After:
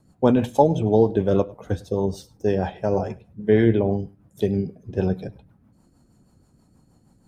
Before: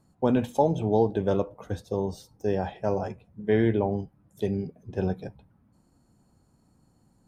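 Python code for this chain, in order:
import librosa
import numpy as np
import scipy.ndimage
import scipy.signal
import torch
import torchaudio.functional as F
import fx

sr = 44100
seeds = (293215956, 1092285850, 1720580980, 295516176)

y = fx.rotary(x, sr, hz=6.3)
y = y + 10.0 ** (-23.0 / 20.0) * np.pad(y, (int(102 * sr / 1000.0), 0))[:len(y)]
y = y * 10.0 ** (7.0 / 20.0)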